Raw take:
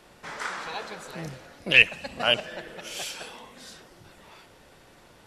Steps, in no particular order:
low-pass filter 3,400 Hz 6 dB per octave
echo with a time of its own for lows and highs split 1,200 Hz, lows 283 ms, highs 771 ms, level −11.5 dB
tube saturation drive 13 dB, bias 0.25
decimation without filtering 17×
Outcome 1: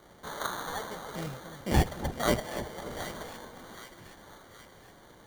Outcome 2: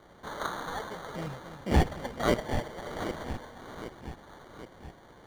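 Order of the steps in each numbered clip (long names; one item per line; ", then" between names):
tube saturation, then low-pass filter, then decimation without filtering, then echo with a time of its own for lows and highs
echo with a time of its own for lows and highs, then tube saturation, then decimation without filtering, then low-pass filter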